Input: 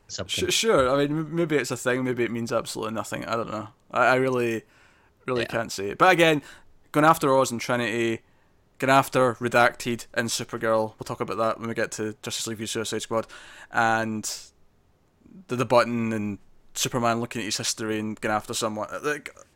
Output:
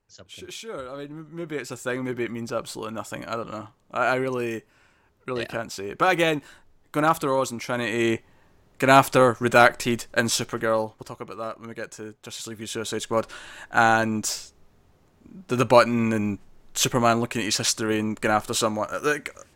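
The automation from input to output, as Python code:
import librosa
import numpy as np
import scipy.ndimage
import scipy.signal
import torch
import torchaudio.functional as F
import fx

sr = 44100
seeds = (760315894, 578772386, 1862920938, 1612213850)

y = fx.gain(x, sr, db=fx.line((0.87, -15.0), (2.0, -3.0), (7.7, -3.0), (8.12, 3.5), (10.48, 3.5), (11.25, -8.0), (12.2, -8.0), (13.28, 3.5)))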